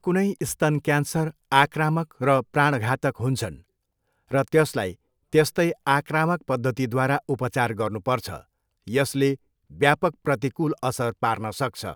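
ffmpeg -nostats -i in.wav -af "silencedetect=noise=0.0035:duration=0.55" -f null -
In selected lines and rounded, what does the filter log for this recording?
silence_start: 3.61
silence_end: 4.28 | silence_duration: 0.67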